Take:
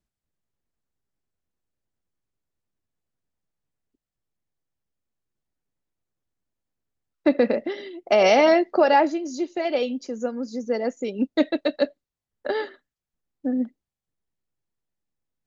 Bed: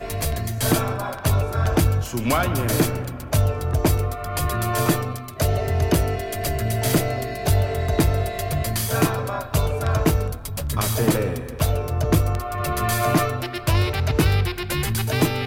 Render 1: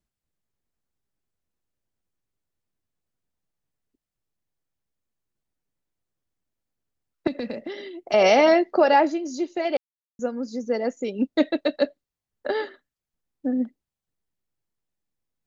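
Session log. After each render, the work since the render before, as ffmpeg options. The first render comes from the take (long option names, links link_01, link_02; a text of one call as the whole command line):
ffmpeg -i in.wav -filter_complex "[0:a]asettb=1/sr,asplit=3[link_01][link_02][link_03];[link_01]atrim=end=7.274[link_04];[link_02]atrim=start=7.27:end=8.14,asetpts=PTS-STARTPTS,afade=type=in:duration=0.004:curve=qsin,afade=type=out:start_time=0.866:duration=0.004:curve=qsin,acrossover=split=180|3000[link_05][link_06][link_07];[link_06]acompressor=threshold=-30dB:ratio=6:attack=3.2:release=140:knee=2.83:detection=peak[link_08];[link_05][link_08][link_07]amix=inputs=3:normalize=0[link_09];[link_03]atrim=start=8.136[link_10];[link_04][link_09]acrossfade=duration=0.004:curve1=hsin:curve2=qsin[link_11];[link_11][link_10]acrossfade=duration=0.004:curve1=qsin:curve2=hsin,asplit=3[link_12][link_13][link_14];[link_12]atrim=end=9.77,asetpts=PTS-STARTPTS,afade=type=out:start_time=9.766:duration=0.004:curve=hsin[link_15];[link_13]atrim=start=9.77:end=10.19,asetpts=PTS-STARTPTS,volume=0[link_16];[link_14]atrim=start=10.19,asetpts=PTS-STARTPTS,afade=type=in:duration=0.004:curve=hsin[link_17];[link_15][link_16][link_17]concat=n=3:v=0:a=1" out.wav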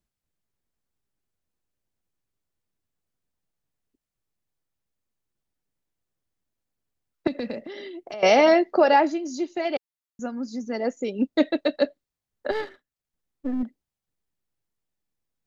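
ffmpeg -i in.wav -filter_complex "[0:a]asettb=1/sr,asplit=3[link_01][link_02][link_03];[link_01]atrim=end=7.654[link_04];[link_02]atrim=start=7.65:end=8.23,asetpts=PTS-STARTPTS,afade=type=in:duration=0.004:curve=qsin,afade=type=out:start_time=0.576:duration=0.004:curve=qsin,acompressor=threshold=-33dB:ratio=6:attack=3.2:release=140:knee=1:detection=peak[link_05];[link_03]atrim=start=8.226[link_06];[link_04][link_05]acrossfade=duration=0.004:curve1=hsin:curve2=qsin[link_07];[link_07][link_06]acrossfade=duration=0.004:curve1=qsin:curve2=hsin,asettb=1/sr,asplit=3[link_08][link_09][link_10];[link_08]atrim=end=8.964[link_11];[link_09]atrim=start=8.96:end=10.8,asetpts=PTS-STARTPTS,afade=type=in:duration=0.004:curve=qsin,afade=type=out:start_time=1.836:duration=0.004:curve=qsin,equalizer=frequency=490:width=4.8:gain=-10.5[link_12];[link_10]atrim=start=10.796[link_13];[link_11][link_12]acrossfade=duration=0.004:curve1=hsin:curve2=qsin[link_14];[link_14][link_13]acrossfade=duration=0.004:curve1=qsin:curve2=hsin,asettb=1/sr,asplit=3[link_15][link_16][link_17];[link_15]atrim=end=12.514[link_18];[link_16]atrim=start=12.51:end=13.63,asetpts=PTS-STARTPTS,afade=type=in:duration=0.004:curve=qsin,afade=type=out:start_time=1.116:duration=0.004:curve=qsin,aeval=exprs='if(lt(val(0),0),0.447*val(0),val(0))':channel_layout=same[link_19];[link_17]atrim=start=13.626[link_20];[link_18][link_19]acrossfade=duration=0.004:curve1=hsin:curve2=qsin[link_21];[link_21][link_20]acrossfade=duration=0.004:curve1=qsin:curve2=hsin" out.wav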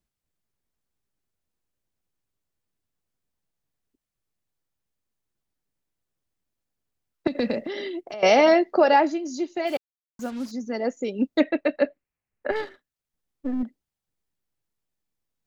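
ffmpeg -i in.wav -filter_complex "[0:a]asettb=1/sr,asplit=3[link_01][link_02][link_03];[link_01]atrim=end=7.354[link_04];[link_02]atrim=start=7.35:end=8.01,asetpts=PTS-STARTPTS,afade=type=in:duration=0.004:curve=qsin,afade=type=out:start_time=0.656:duration=0.004:curve=qsin,acontrast=52[link_05];[link_03]atrim=start=8.006[link_06];[link_04][link_05]acrossfade=duration=0.004:curve1=hsin:curve2=qsin[link_07];[link_07][link_06]acrossfade=duration=0.004:curve1=qsin:curve2=hsin,asplit=3[link_08][link_09][link_10];[link_08]afade=type=out:start_time=9.66:duration=0.02[link_11];[link_09]acrusher=bits=6:mix=0:aa=0.5,afade=type=in:start_time=9.66:duration=0.02,afade=type=out:start_time=10.5:duration=0.02[link_12];[link_10]afade=type=in:start_time=10.5:duration=0.02[link_13];[link_11][link_12][link_13]amix=inputs=3:normalize=0,asettb=1/sr,asplit=3[link_14][link_15][link_16];[link_14]atrim=end=11.404[link_17];[link_15]atrim=start=11.4:end=12.56,asetpts=PTS-STARTPTS,afade=type=in:duration=0.004:curve=qsin,afade=type=out:start_time=1.156:duration=0.004:curve=qsin,highshelf=frequency=3000:width_type=q:width=3:gain=-6.5[link_18];[link_16]atrim=start=12.556[link_19];[link_17][link_18]acrossfade=duration=0.004:curve1=hsin:curve2=qsin[link_20];[link_20][link_19]acrossfade=duration=0.004:curve1=qsin:curve2=hsin" out.wav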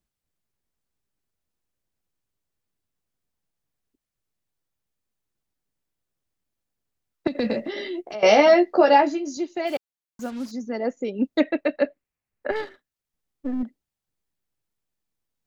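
ffmpeg -i in.wav -filter_complex "[0:a]asettb=1/sr,asplit=3[link_01][link_02][link_03];[link_01]atrim=end=7.434[link_04];[link_02]atrim=start=7.43:end=9.37,asetpts=PTS-STARTPTS,afade=type=in:duration=0.004:curve=qsin,afade=type=out:start_time=1.936:duration=0.004:curve=qsin,asplit=2[link_05][link_06];[link_06]adelay=14,volume=-4dB[link_07];[link_05][link_07]amix=inputs=2:normalize=0,atrim=end_sample=85554[link_08];[link_03]atrim=start=9.366[link_09];[link_04][link_08]acrossfade=duration=0.004:curve1=hsin:curve2=qsin[link_10];[link_10][link_09]acrossfade=duration=0.004:curve1=qsin:curve2=hsin,asettb=1/sr,asplit=3[link_11][link_12][link_13];[link_11]atrim=end=10.664[link_14];[link_12]atrim=start=10.66:end=11.25,asetpts=PTS-STARTPTS,afade=type=in:duration=0.004:curve=qsin,afade=type=out:start_time=0.586:duration=0.004:curve=qsin,aemphasis=mode=reproduction:type=50fm[link_15];[link_13]atrim=start=11.246[link_16];[link_14][link_15]acrossfade=duration=0.004:curve1=hsin:curve2=qsin[link_17];[link_17][link_16]acrossfade=duration=0.004:curve1=qsin:curve2=hsin" out.wav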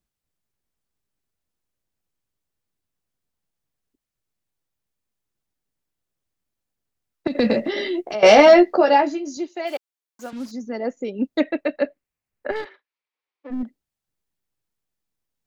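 ffmpeg -i in.wav -filter_complex "[0:a]asplit=3[link_01][link_02][link_03];[link_01]afade=type=out:start_time=7.29:duration=0.02[link_04];[link_02]acontrast=53,afade=type=in:start_time=7.29:duration=0.02,afade=type=out:start_time=8.75:duration=0.02[link_05];[link_03]afade=type=in:start_time=8.75:duration=0.02[link_06];[link_04][link_05][link_06]amix=inputs=3:normalize=0,asettb=1/sr,asplit=3[link_07][link_08][link_09];[link_07]atrim=end=9.484[link_10];[link_08]atrim=start=9.48:end=10.33,asetpts=PTS-STARTPTS,afade=type=in:duration=0.004:curve=qsin,afade=type=out:start_time=0.846:duration=0.004:curve=qsin,highpass=370[link_11];[link_09]atrim=start=10.326[link_12];[link_10][link_11]acrossfade=duration=0.004:curve1=hsin:curve2=qsin[link_13];[link_13][link_12]acrossfade=duration=0.004:curve1=qsin:curve2=hsin,asplit=3[link_14][link_15][link_16];[link_14]afade=type=out:start_time=12.64:duration=0.02[link_17];[link_15]highpass=frequency=400:width=0.5412,highpass=frequency=400:width=1.3066,equalizer=frequency=660:width_type=q:width=4:gain=-4,equalizer=frequency=990:width_type=q:width=4:gain=6,equalizer=frequency=2300:width_type=q:width=4:gain=8,lowpass=frequency=4700:width=0.5412,lowpass=frequency=4700:width=1.3066,afade=type=in:start_time=12.64:duration=0.02,afade=type=out:start_time=13.5:duration=0.02[link_18];[link_16]afade=type=in:start_time=13.5:duration=0.02[link_19];[link_17][link_18][link_19]amix=inputs=3:normalize=0" out.wav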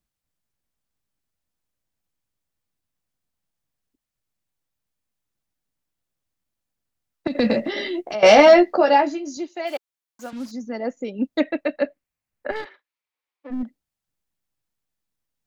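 ffmpeg -i in.wav -af "equalizer=frequency=400:width_type=o:width=0.33:gain=-5" out.wav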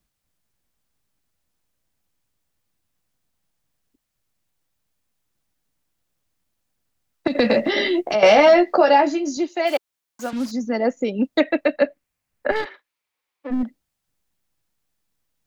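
ffmpeg -i in.wav -filter_complex "[0:a]acrossover=split=420|4500[link_01][link_02][link_03];[link_01]acompressor=threshold=-27dB:ratio=4[link_04];[link_02]acompressor=threshold=-15dB:ratio=4[link_05];[link_03]acompressor=threshold=-43dB:ratio=4[link_06];[link_04][link_05][link_06]amix=inputs=3:normalize=0,asplit=2[link_07][link_08];[link_08]alimiter=limit=-16dB:level=0:latency=1:release=239,volume=2dB[link_09];[link_07][link_09]amix=inputs=2:normalize=0" out.wav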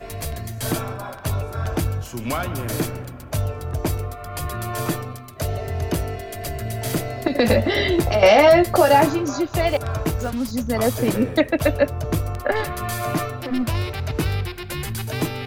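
ffmpeg -i in.wav -i bed.wav -filter_complex "[1:a]volume=-4.5dB[link_01];[0:a][link_01]amix=inputs=2:normalize=0" out.wav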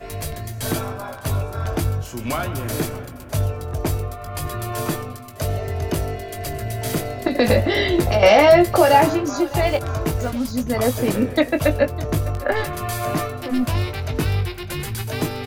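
ffmpeg -i in.wav -filter_complex "[0:a]asplit=2[link_01][link_02];[link_02]adelay=20,volume=-9dB[link_03];[link_01][link_03]amix=inputs=2:normalize=0,aecho=1:1:606:0.119" out.wav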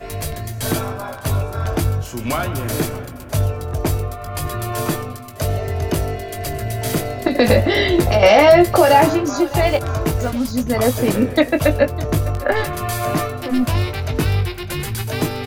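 ffmpeg -i in.wav -af "volume=3dB,alimiter=limit=-2dB:level=0:latency=1" out.wav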